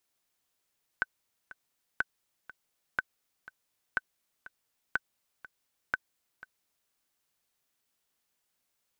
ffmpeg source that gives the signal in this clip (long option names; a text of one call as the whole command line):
ffmpeg -f lavfi -i "aevalsrc='pow(10,(-14-18.5*gte(mod(t,2*60/122),60/122))/20)*sin(2*PI*1520*mod(t,60/122))*exp(-6.91*mod(t,60/122)/0.03)':duration=5.9:sample_rate=44100" out.wav